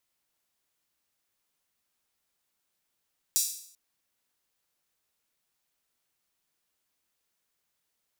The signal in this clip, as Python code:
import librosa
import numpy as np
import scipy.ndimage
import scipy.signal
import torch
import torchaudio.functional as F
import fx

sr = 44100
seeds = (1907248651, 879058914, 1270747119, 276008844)

y = fx.drum_hat_open(sr, length_s=0.39, from_hz=5800.0, decay_s=0.61)